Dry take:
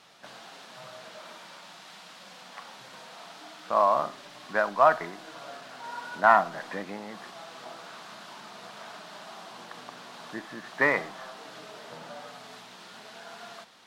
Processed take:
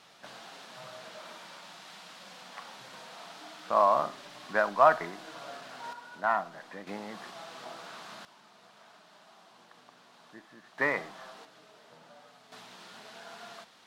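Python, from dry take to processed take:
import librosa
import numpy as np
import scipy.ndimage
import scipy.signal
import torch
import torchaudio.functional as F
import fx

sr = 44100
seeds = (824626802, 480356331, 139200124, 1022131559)

y = fx.gain(x, sr, db=fx.steps((0.0, -1.0), (5.93, -9.0), (6.87, -1.0), (8.25, -13.0), (10.78, -5.0), (11.45, -12.0), (12.52, -2.5)))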